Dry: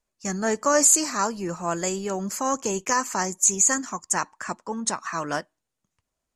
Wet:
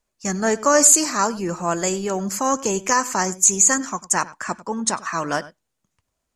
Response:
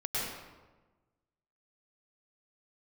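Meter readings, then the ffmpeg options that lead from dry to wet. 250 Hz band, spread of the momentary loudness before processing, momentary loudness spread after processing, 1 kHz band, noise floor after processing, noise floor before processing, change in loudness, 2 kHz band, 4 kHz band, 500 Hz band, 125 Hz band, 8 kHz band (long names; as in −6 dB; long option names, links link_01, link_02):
+4.5 dB, 13 LU, 13 LU, +4.5 dB, −78 dBFS, −83 dBFS, +4.5 dB, +4.5 dB, +4.5 dB, +4.5 dB, +4.5 dB, +4.5 dB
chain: -filter_complex "[1:a]atrim=start_sample=2205,afade=type=out:start_time=0.14:duration=0.01,atrim=end_sample=6615[link_01];[0:a][link_01]afir=irnorm=-1:irlink=0,volume=7dB"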